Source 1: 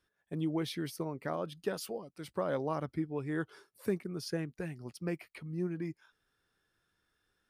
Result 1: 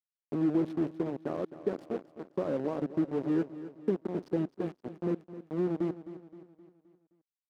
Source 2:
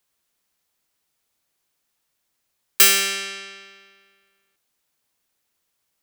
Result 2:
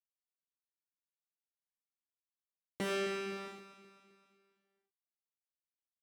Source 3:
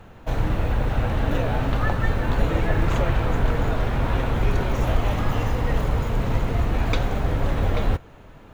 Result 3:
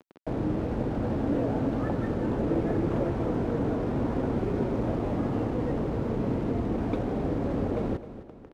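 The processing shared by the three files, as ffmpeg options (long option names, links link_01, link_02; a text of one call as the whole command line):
ffmpeg -i in.wav -filter_complex "[0:a]asplit=2[link_01][link_02];[link_02]acompressor=threshold=-31dB:ratio=12,volume=0dB[link_03];[link_01][link_03]amix=inputs=2:normalize=0,aeval=exprs='0.237*(abs(mod(val(0)/0.237+3,4)-2)-1)':channel_layout=same,acrusher=bits=4:mix=0:aa=0.000001,bandpass=frequency=300:width_type=q:width=1.4:csg=0,aecho=1:1:261|522|783|1044|1305:0.2|0.0958|0.046|0.0221|0.0106,volume=2dB" out.wav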